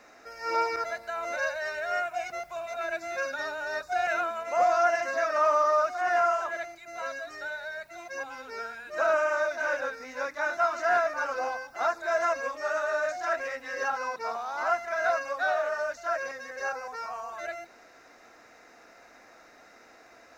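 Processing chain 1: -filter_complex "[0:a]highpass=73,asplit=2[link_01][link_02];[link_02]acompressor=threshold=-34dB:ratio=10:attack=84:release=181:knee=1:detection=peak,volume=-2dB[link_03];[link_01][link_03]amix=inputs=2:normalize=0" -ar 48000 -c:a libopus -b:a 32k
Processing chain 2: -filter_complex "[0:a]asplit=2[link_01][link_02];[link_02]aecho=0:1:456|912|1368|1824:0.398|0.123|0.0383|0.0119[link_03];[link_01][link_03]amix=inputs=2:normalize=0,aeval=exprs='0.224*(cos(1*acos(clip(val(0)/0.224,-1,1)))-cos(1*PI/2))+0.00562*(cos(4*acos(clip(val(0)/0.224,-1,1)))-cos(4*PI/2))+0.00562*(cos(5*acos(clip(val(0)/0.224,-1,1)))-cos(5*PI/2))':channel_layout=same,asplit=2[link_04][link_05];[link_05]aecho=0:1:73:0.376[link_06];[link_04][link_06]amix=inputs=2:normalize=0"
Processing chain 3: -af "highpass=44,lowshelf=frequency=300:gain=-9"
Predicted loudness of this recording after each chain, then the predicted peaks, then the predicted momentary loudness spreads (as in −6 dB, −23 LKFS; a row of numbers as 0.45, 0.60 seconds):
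−26.5, −27.5, −30.5 LKFS; −12.0, −12.0, −15.0 dBFS; 10, 12, 12 LU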